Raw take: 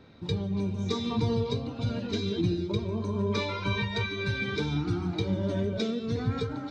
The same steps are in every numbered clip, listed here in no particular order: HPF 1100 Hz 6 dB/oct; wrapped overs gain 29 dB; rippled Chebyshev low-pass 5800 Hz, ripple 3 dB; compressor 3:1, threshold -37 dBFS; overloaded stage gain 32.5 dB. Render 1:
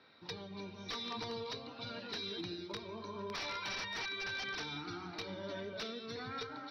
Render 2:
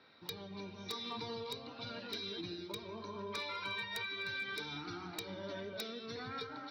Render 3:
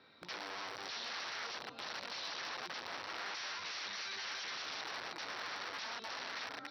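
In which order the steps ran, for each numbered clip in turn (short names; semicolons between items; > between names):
HPF > wrapped overs > rippled Chebyshev low-pass > compressor > overloaded stage; HPF > compressor > rippled Chebyshev low-pass > wrapped overs > overloaded stage; wrapped overs > compressor > rippled Chebyshev low-pass > overloaded stage > HPF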